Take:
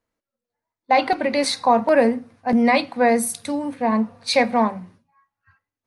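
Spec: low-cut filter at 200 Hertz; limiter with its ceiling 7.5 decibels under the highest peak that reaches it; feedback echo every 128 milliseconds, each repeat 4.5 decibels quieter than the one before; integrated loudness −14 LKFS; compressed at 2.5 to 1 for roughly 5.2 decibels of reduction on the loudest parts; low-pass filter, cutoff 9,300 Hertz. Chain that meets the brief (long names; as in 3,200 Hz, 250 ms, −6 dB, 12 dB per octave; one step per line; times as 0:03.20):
high-pass filter 200 Hz
low-pass filter 9,300 Hz
downward compressor 2.5 to 1, threshold −19 dBFS
brickwall limiter −16 dBFS
repeating echo 128 ms, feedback 60%, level −4.5 dB
level +10.5 dB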